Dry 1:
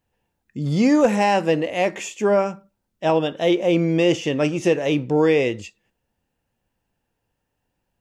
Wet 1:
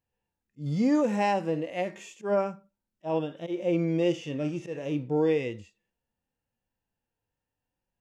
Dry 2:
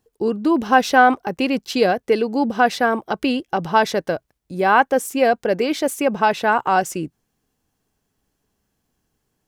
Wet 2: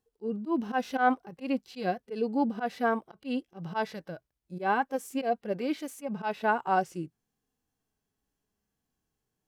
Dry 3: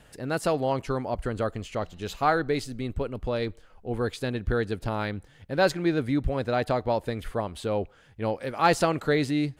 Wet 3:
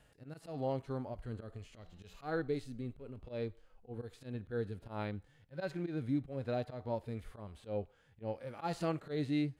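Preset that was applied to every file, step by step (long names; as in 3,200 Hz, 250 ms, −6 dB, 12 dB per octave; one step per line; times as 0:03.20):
volume swells 118 ms
harmonic and percussive parts rebalanced percussive −17 dB
level −7 dB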